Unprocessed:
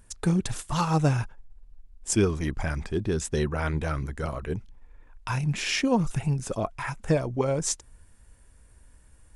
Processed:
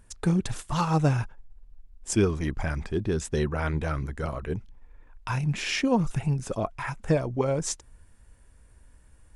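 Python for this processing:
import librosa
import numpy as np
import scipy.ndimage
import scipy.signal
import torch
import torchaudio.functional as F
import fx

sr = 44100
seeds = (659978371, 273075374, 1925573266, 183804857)

y = fx.high_shelf(x, sr, hz=5200.0, db=-5.0)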